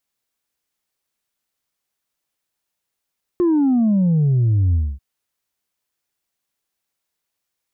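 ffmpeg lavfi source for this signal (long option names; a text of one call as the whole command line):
ffmpeg -f lavfi -i "aevalsrc='0.211*clip((1.59-t)/0.25,0,1)*tanh(1.19*sin(2*PI*360*1.59/log(65/360)*(exp(log(65/360)*t/1.59)-1)))/tanh(1.19)':duration=1.59:sample_rate=44100" out.wav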